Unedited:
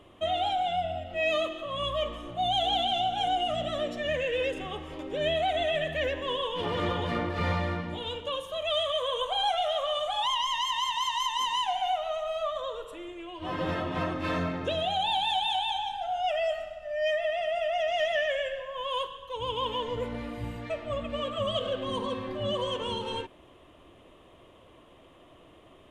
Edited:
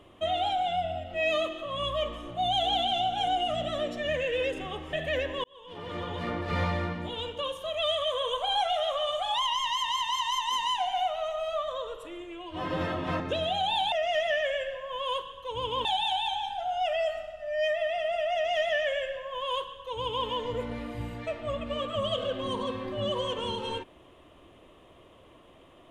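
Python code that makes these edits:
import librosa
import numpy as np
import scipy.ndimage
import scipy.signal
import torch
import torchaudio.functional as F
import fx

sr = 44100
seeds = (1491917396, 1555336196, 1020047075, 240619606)

y = fx.edit(x, sr, fx.cut(start_s=4.93, length_s=0.88),
    fx.fade_in_span(start_s=6.32, length_s=1.17),
    fx.cut(start_s=14.08, length_s=0.48),
    fx.duplicate(start_s=17.77, length_s=1.93, to_s=15.28), tone=tone)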